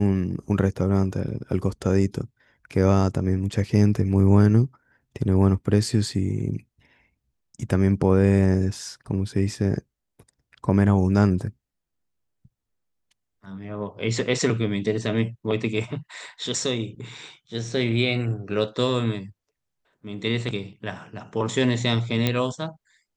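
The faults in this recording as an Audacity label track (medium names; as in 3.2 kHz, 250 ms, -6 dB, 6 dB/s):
22.270000	22.270000	pop -8 dBFS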